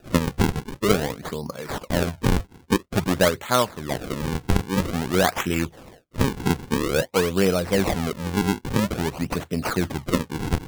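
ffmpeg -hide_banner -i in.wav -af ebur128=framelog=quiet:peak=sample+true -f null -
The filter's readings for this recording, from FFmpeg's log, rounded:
Integrated loudness:
  I:         -24.3 LUFS
  Threshold: -34.3 LUFS
Loudness range:
  LRA:         1.5 LU
  Threshold: -44.1 LUFS
  LRA low:   -25.0 LUFS
  LRA high:  -23.4 LUFS
Sample peak:
  Peak:       -4.3 dBFS
True peak:
  Peak:       -2.9 dBFS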